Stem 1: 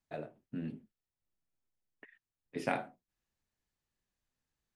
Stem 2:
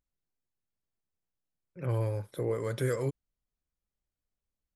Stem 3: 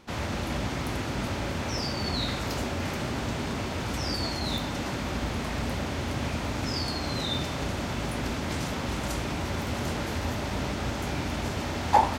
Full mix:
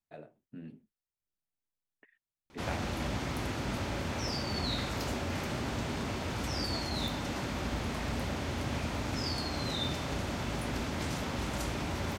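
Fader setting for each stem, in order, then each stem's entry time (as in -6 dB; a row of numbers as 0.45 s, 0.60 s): -6.5 dB, mute, -4.0 dB; 0.00 s, mute, 2.50 s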